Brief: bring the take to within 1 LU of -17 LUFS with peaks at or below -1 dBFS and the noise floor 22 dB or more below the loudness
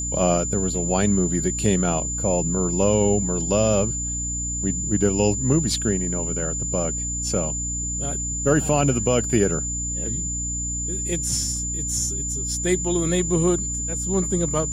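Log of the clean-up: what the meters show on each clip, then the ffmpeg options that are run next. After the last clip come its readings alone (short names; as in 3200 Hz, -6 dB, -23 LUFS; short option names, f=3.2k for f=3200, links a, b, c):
hum 60 Hz; harmonics up to 300 Hz; hum level -29 dBFS; steady tone 7100 Hz; tone level -26 dBFS; loudness -22.0 LUFS; peak -6.0 dBFS; loudness target -17.0 LUFS
-> -af "bandreject=f=60:t=h:w=4,bandreject=f=120:t=h:w=4,bandreject=f=180:t=h:w=4,bandreject=f=240:t=h:w=4,bandreject=f=300:t=h:w=4"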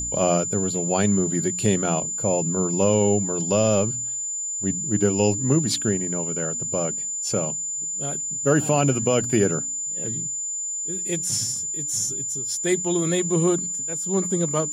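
hum none; steady tone 7100 Hz; tone level -26 dBFS
-> -af "bandreject=f=7.1k:w=30"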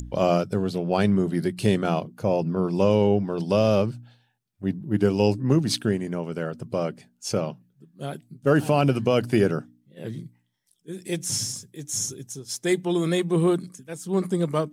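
steady tone none; loudness -24.5 LUFS; peak -7.5 dBFS; loudness target -17.0 LUFS
-> -af "volume=7.5dB,alimiter=limit=-1dB:level=0:latency=1"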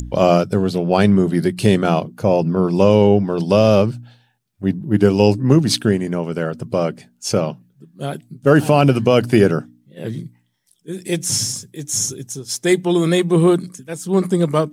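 loudness -17.0 LUFS; peak -1.0 dBFS; noise floor -61 dBFS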